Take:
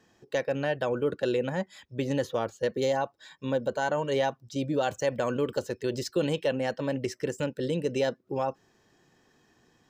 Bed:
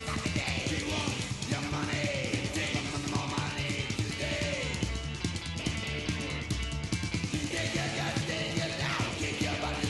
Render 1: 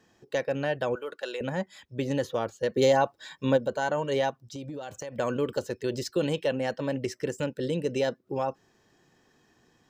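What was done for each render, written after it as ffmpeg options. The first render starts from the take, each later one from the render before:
ffmpeg -i in.wav -filter_complex "[0:a]asettb=1/sr,asplit=3[link_01][link_02][link_03];[link_01]atrim=end=0.954[link_04];[link_02]atrim=start=0.95:end=1.41,asetpts=PTS-STARTPTS,afade=type=in:duration=0.004:curve=qsin,afade=type=out:start_time=0.456:duration=0.004:curve=qsin,highpass=730[link_05];[link_03]atrim=start=1.406[link_06];[link_04][link_05]acrossfade=duration=0.004:curve1=hsin:curve2=qsin[link_07];[link_07][link_06]acrossfade=duration=0.004:curve1=qsin:curve2=hsin,asplit=3[link_08][link_09][link_10];[link_08]afade=type=out:start_time=2.76:duration=0.02[link_11];[link_09]acontrast=40,afade=type=in:start_time=2.76:duration=0.02,afade=type=out:start_time=3.56:duration=0.02[link_12];[link_10]afade=type=in:start_time=3.56:duration=0.02[link_13];[link_11][link_12][link_13]amix=inputs=3:normalize=0,asplit=3[link_14][link_15][link_16];[link_14]afade=type=out:start_time=4.3:duration=0.02[link_17];[link_15]acompressor=threshold=-34dB:ratio=8:attack=3.2:release=140:knee=1:detection=peak,afade=type=in:start_time=4.3:duration=0.02,afade=type=out:start_time=5.17:duration=0.02[link_18];[link_16]afade=type=in:start_time=5.17:duration=0.02[link_19];[link_17][link_18][link_19]amix=inputs=3:normalize=0" out.wav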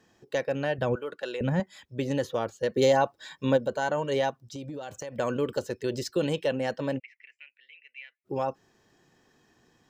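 ffmpeg -i in.wav -filter_complex "[0:a]asettb=1/sr,asplit=3[link_01][link_02][link_03];[link_01]atrim=end=0.784[link_04];[link_02]atrim=start=0.78:end=1.6,asetpts=PTS-STARTPTS,afade=type=in:duration=0.004:curve=qsin,afade=type=out:start_time=0.816:duration=0.004:curve=qsin,bass=frequency=250:gain=10,treble=frequency=4000:gain=-4[link_05];[link_03]atrim=start=1.596[link_06];[link_04][link_05]acrossfade=duration=0.004:curve1=hsin:curve2=qsin[link_07];[link_07][link_06]acrossfade=duration=0.004:curve1=qsin:curve2=hsin,asplit=3[link_08][link_09][link_10];[link_08]afade=type=out:start_time=6.98:duration=0.02[link_11];[link_09]asuperpass=centerf=2300:order=4:qfactor=3.8,afade=type=in:start_time=6.98:duration=0.02,afade=type=out:start_time=8.24:duration=0.02[link_12];[link_10]afade=type=in:start_time=8.24:duration=0.02[link_13];[link_11][link_12][link_13]amix=inputs=3:normalize=0" out.wav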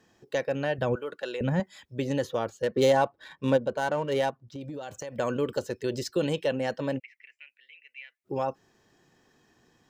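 ffmpeg -i in.wav -filter_complex "[0:a]asettb=1/sr,asplit=3[link_01][link_02][link_03];[link_01]atrim=end=2.624[link_04];[link_02]atrim=start=2.62:end=4.61,asetpts=PTS-STARTPTS,afade=type=in:duration=0.004:curve=qsin,afade=type=out:start_time=1.986:duration=0.004:curve=qsin,adynamicsmooth=sensitivity=8:basefreq=2300[link_05];[link_03]atrim=start=4.606[link_06];[link_04][link_05]acrossfade=duration=0.004:curve1=hsin:curve2=qsin[link_07];[link_07][link_06]acrossfade=duration=0.004:curve1=qsin:curve2=hsin" out.wav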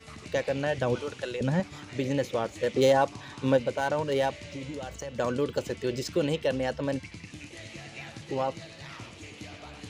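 ffmpeg -i in.wav -i bed.wav -filter_complex "[1:a]volume=-12dB[link_01];[0:a][link_01]amix=inputs=2:normalize=0" out.wav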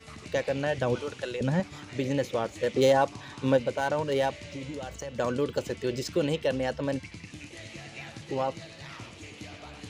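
ffmpeg -i in.wav -af anull out.wav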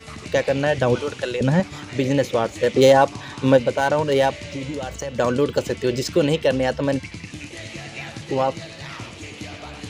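ffmpeg -i in.wav -af "volume=8.5dB" out.wav

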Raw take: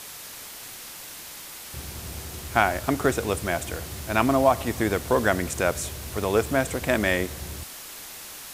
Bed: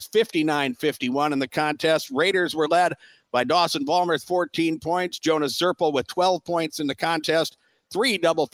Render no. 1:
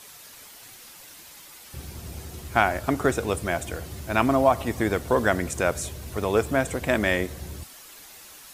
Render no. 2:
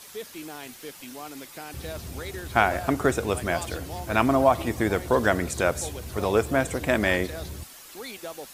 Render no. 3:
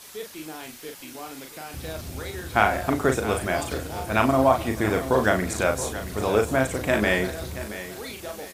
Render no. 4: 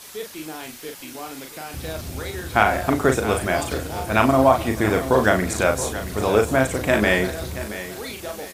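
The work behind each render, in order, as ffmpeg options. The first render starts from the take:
ffmpeg -i in.wav -af "afftdn=noise_reduction=8:noise_floor=-41" out.wav
ffmpeg -i in.wav -i bed.wav -filter_complex "[1:a]volume=-17.5dB[link_01];[0:a][link_01]amix=inputs=2:normalize=0" out.wav
ffmpeg -i in.wav -filter_complex "[0:a]asplit=2[link_01][link_02];[link_02]adelay=38,volume=-5dB[link_03];[link_01][link_03]amix=inputs=2:normalize=0,aecho=1:1:676|1352|2028:0.211|0.0697|0.023" out.wav
ffmpeg -i in.wav -af "volume=3.5dB,alimiter=limit=-2dB:level=0:latency=1" out.wav

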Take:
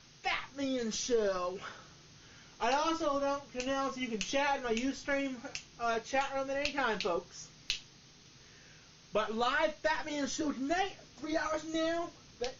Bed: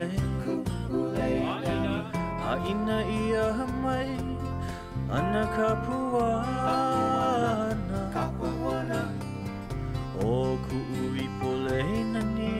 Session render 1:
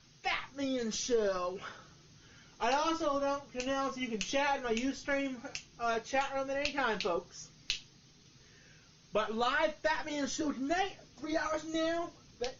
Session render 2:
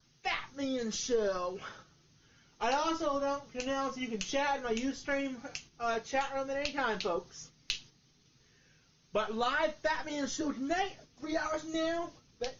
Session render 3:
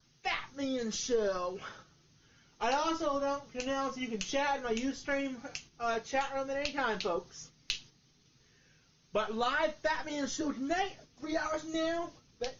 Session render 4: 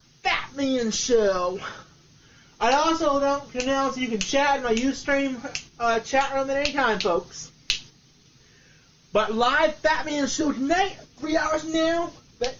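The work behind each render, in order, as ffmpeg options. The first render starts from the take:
ffmpeg -i in.wav -af "afftdn=noise_reduction=6:noise_floor=-58" out.wav
ffmpeg -i in.wav -af "adynamicequalizer=threshold=0.002:dfrequency=2500:dqfactor=3.2:tfrequency=2500:tqfactor=3.2:attack=5:release=100:ratio=0.375:range=2:mode=cutabove:tftype=bell,agate=range=-6dB:threshold=-52dB:ratio=16:detection=peak" out.wav
ffmpeg -i in.wav -af anull out.wav
ffmpeg -i in.wav -af "volume=10.5dB" out.wav

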